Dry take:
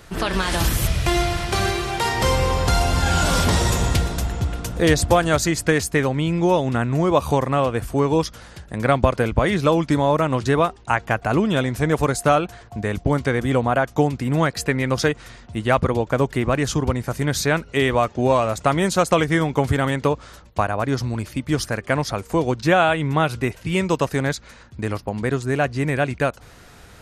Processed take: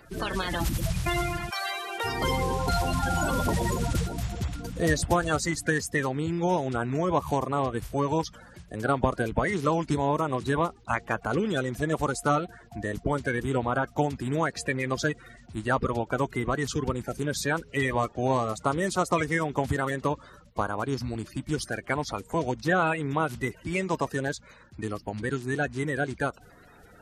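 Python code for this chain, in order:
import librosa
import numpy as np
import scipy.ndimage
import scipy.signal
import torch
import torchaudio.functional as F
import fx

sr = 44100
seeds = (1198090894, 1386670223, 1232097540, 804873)

y = fx.spec_quant(x, sr, step_db=30)
y = fx.highpass(y, sr, hz=fx.line((1.49, 900.0), (2.03, 310.0)), slope=24, at=(1.49, 2.03), fade=0.02)
y = y * librosa.db_to_amplitude(-7.0)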